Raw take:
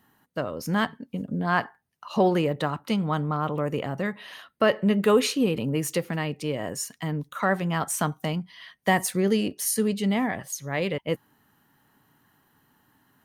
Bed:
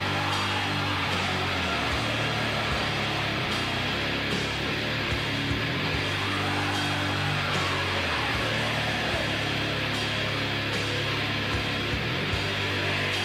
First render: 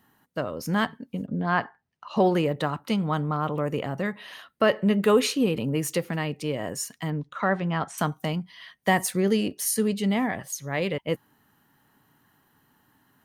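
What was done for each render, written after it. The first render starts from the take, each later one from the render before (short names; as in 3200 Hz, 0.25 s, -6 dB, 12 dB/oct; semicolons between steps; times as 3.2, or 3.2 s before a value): 1.26–2.17 air absorption 110 m; 7.1–7.98 air absorption 130 m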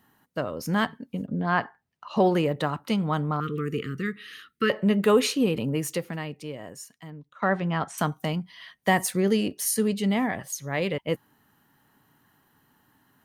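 3.4–4.7 Chebyshev band-stop 460–1200 Hz, order 4; 5.64–7.42 fade out quadratic, to -13.5 dB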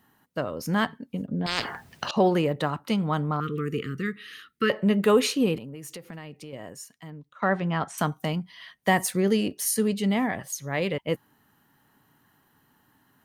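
1.46–2.11 spectral compressor 10:1; 5.57–6.53 compressor 8:1, threshold -36 dBFS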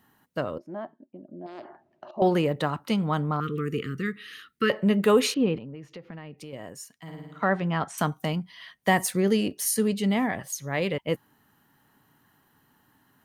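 0.58–2.22 double band-pass 470 Hz, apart 0.78 oct; 5.34–6.38 air absorption 250 m; 6.96–7.45 flutter echo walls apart 9.4 m, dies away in 1.2 s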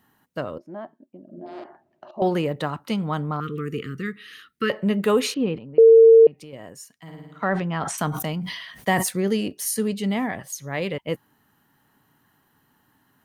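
1.22–1.64 flutter echo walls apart 8.1 m, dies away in 0.94 s; 5.78–6.27 bleep 453 Hz -7 dBFS; 7.46–9.09 sustainer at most 48 dB/s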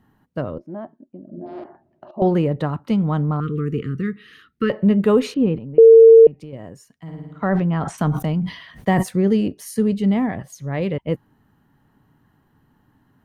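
tilt -3 dB/oct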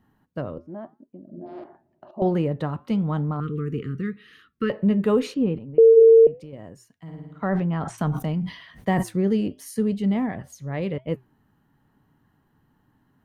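flange 0.9 Hz, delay 3.3 ms, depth 3.2 ms, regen -90%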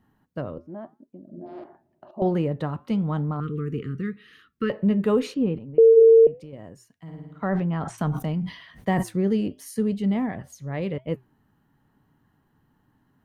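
gain -1 dB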